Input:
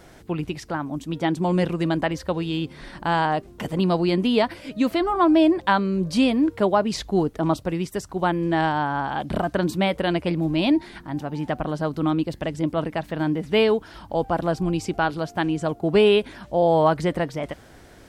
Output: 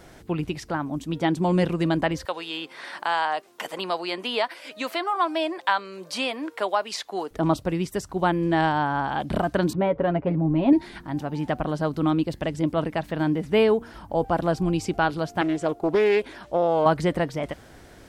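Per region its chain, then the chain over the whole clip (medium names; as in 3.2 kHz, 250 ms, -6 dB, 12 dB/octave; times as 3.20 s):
2.25–7.31 s: high-pass 720 Hz + three bands compressed up and down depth 40%
9.73–10.73 s: low-pass 1.2 kHz + comb 7.3 ms, depth 54%
13.47–14.25 s: peaking EQ 3.8 kHz -6.5 dB 1.2 oct + de-hum 234.1 Hz, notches 3
15.41–16.86 s: resonant low shelf 270 Hz -6.5 dB, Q 1.5 + compression 8:1, threshold -16 dBFS + loudspeaker Doppler distortion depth 0.28 ms
whole clip: none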